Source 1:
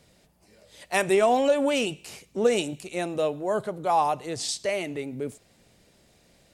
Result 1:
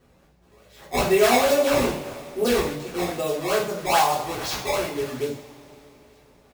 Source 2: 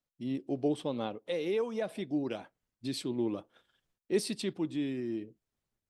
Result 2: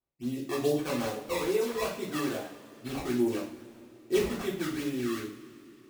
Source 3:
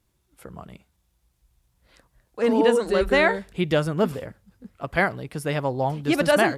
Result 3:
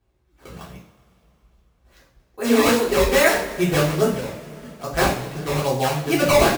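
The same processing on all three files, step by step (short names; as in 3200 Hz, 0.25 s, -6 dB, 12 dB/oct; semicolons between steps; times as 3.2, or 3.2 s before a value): downsampling 16000 Hz; decimation with a swept rate 17×, swing 160% 2.4 Hz; two-slope reverb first 0.44 s, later 3.5 s, from -21 dB, DRR -7 dB; gain -4.5 dB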